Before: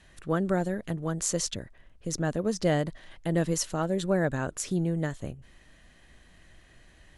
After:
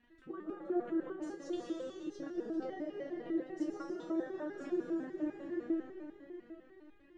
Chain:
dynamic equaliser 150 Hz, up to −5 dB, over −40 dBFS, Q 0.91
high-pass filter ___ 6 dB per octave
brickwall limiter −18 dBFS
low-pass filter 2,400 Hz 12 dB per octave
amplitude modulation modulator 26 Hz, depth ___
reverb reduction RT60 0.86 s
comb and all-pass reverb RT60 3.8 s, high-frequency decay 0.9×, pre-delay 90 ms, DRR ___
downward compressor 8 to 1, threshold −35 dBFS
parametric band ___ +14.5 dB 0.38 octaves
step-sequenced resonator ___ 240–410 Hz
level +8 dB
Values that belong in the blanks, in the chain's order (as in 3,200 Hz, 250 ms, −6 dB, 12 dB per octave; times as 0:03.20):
51 Hz, 55%, −0.5 dB, 330 Hz, 10 Hz